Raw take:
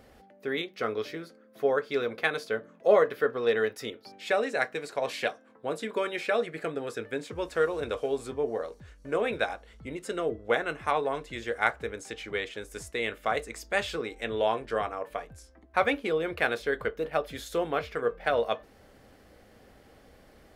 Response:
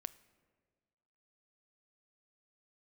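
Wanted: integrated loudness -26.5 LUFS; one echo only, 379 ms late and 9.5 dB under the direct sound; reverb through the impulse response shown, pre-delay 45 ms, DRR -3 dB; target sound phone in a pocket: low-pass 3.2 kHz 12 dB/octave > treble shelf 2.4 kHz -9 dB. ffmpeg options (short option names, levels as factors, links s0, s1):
-filter_complex "[0:a]aecho=1:1:379:0.335,asplit=2[s0][s1];[1:a]atrim=start_sample=2205,adelay=45[s2];[s1][s2]afir=irnorm=-1:irlink=0,volume=2.11[s3];[s0][s3]amix=inputs=2:normalize=0,lowpass=3200,highshelf=f=2400:g=-9"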